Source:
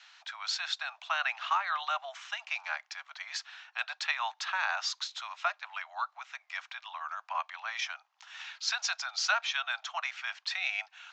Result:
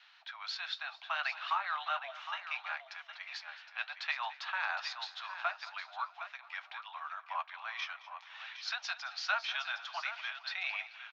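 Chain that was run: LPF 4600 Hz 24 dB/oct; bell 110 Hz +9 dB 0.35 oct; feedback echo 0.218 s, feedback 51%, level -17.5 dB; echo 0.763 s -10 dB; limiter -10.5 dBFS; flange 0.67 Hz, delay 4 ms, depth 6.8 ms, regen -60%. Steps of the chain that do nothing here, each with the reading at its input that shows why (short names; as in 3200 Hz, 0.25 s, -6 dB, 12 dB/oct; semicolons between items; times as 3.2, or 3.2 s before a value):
bell 110 Hz: input band starts at 540 Hz; limiter -10.5 dBFS: input peak -16.0 dBFS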